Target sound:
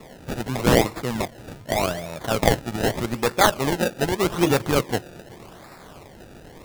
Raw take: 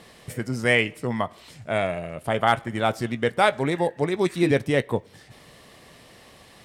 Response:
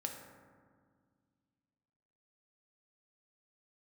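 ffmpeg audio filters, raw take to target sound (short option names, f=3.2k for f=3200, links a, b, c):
-filter_complex "[0:a]crystalizer=i=4:c=0,asplit=2[a][b];[1:a]atrim=start_sample=2205,asetrate=28665,aresample=44100[c];[b][c]afir=irnorm=-1:irlink=0,volume=-20dB[d];[a][d]amix=inputs=2:normalize=0,acrusher=samples=28:mix=1:aa=0.000001:lfo=1:lforange=28:lforate=0.83,volume=-1dB"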